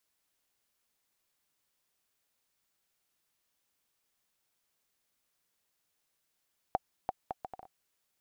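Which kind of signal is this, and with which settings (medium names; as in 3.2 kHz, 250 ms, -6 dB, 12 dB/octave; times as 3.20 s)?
bouncing ball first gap 0.34 s, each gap 0.64, 758 Hz, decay 30 ms -15.5 dBFS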